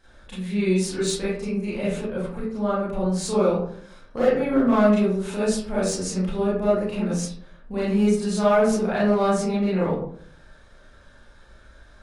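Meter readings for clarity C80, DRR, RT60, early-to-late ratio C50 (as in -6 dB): 5.5 dB, -10.0 dB, 0.60 s, 0.0 dB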